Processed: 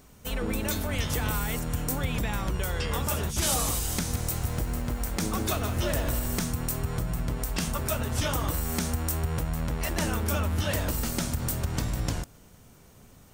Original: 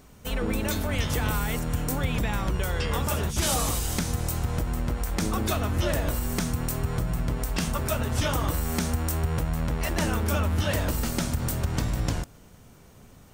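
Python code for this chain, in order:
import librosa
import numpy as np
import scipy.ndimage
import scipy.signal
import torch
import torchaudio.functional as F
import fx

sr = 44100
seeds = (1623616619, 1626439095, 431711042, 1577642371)

y = fx.high_shelf(x, sr, hz=5300.0, db=4.5)
y = fx.echo_crushed(y, sr, ms=166, feedback_pct=55, bits=7, wet_db=-10.0, at=(3.94, 6.46))
y = F.gain(torch.from_numpy(y), -2.5).numpy()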